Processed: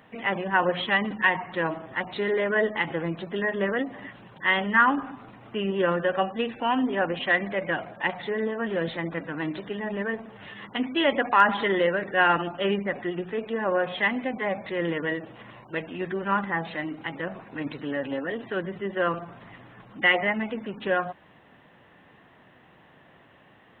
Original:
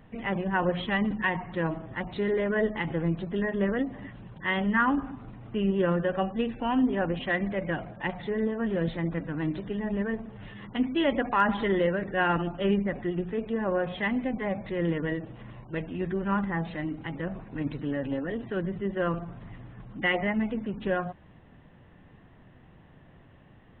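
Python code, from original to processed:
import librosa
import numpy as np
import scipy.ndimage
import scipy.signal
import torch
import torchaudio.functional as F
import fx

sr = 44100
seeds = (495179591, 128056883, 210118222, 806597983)

y = fx.highpass(x, sr, hz=650.0, slope=6)
y = y * librosa.db_to_amplitude(7.0)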